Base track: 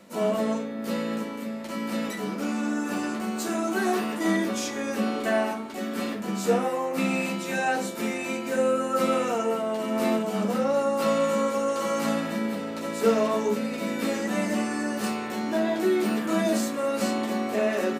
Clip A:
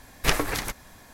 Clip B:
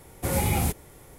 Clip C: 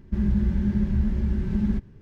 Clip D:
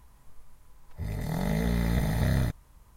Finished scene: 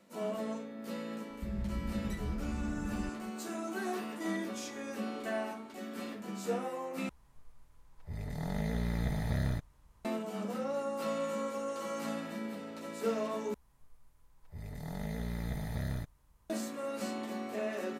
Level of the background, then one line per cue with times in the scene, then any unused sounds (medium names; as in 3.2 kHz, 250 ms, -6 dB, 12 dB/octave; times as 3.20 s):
base track -11.5 dB
1.30 s: add C -14.5 dB
7.09 s: replace with D -6.5 dB + treble shelf 11 kHz -8.5 dB
13.54 s: replace with D -10.5 dB
not used: A, B